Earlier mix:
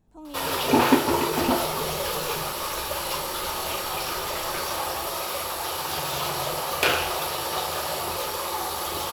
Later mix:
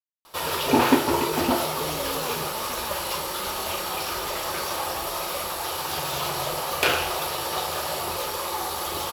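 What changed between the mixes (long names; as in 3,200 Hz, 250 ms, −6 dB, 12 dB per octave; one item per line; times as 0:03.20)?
speech: entry +1.65 s
second sound: add Butterworth high-pass 150 Hz 72 dB per octave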